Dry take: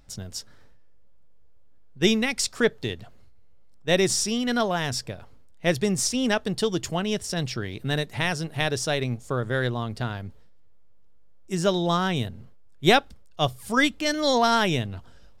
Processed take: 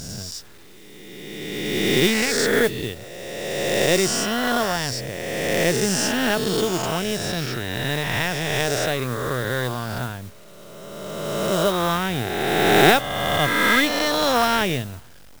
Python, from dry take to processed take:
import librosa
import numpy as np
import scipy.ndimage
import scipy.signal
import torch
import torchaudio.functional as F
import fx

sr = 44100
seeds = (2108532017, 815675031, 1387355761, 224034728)

y = fx.spec_swells(x, sr, rise_s=2.29)
y = fx.high_shelf(y, sr, hz=5200.0, db=-4.5)
y = fx.quant_dither(y, sr, seeds[0], bits=8, dither='none')
y = fx.mod_noise(y, sr, seeds[1], snr_db=15)
y = y * 10.0 ** (-1.0 / 20.0)